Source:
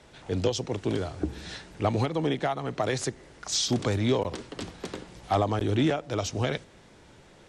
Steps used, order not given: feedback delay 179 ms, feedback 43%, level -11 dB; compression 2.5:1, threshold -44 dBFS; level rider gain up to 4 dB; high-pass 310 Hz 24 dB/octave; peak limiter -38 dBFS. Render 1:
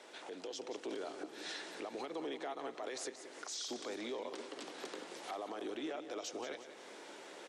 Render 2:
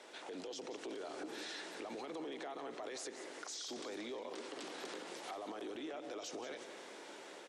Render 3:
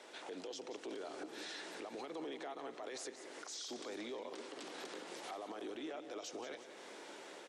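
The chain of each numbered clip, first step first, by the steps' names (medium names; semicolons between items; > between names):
compression > high-pass > peak limiter > feedback delay > level rider; high-pass > peak limiter > level rider > compression > feedback delay; high-pass > compression > level rider > peak limiter > feedback delay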